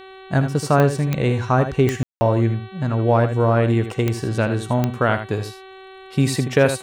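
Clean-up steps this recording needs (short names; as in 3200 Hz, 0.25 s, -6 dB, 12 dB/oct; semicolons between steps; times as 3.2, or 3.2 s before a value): de-click; de-hum 381 Hz, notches 11; room tone fill 2.03–2.21; inverse comb 78 ms -9.5 dB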